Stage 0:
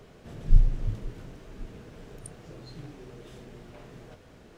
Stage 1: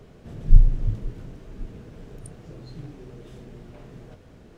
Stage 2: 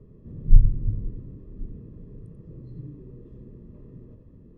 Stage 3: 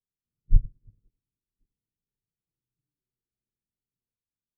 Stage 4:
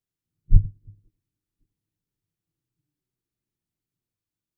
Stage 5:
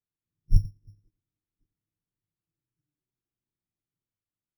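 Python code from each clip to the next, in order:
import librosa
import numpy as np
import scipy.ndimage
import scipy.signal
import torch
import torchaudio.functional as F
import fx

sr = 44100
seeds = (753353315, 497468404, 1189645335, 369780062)

y1 = fx.low_shelf(x, sr, hz=420.0, db=7.5)
y1 = y1 * 10.0 ** (-2.0 / 20.0)
y2 = np.convolve(y1, np.full(59, 1.0 / 59))[:len(y1)]
y2 = y2 + 10.0 ** (-7.0 / 20.0) * np.pad(y2, (int(89 * sr / 1000.0), 0))[:len(y2)]
y3 = fx.upward_expand(y2, sr, threshold_db=-37.0, expansion=2.5)
y3 = y3 * 10.0 ** (-3.5 / 20.0)
y4 = fx.graphic_eq_31(y3, sr, hz=(100, 160, 315), db=(10, 7, 10))
y4 = y4 * 10.0 ** (2.5 / 20.0)
y5 = np.repeat(scipy.signal.resample_poly(y4, 1, 8), 8)[:len(y4)]
y5 = y5 * 10.0 ** (-5.0 / 20.0)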